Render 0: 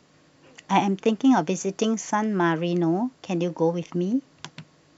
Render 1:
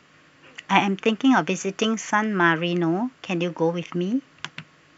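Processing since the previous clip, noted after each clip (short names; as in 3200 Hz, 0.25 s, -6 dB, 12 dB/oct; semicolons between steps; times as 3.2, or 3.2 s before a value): band shelf 1900 Hz +9 dB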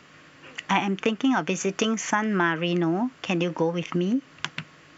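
compressor 3:1, threshold -25 dBFS, peak gain reduction 10 dB; gain +3.5 dB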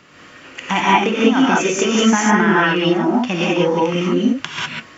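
non-linear reverb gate 0.22 s rising, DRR -6.5 dB; gain +2.5 dB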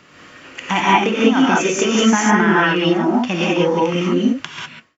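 ending faded out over 0.71 s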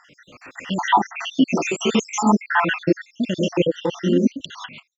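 random spectral dropouts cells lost 73%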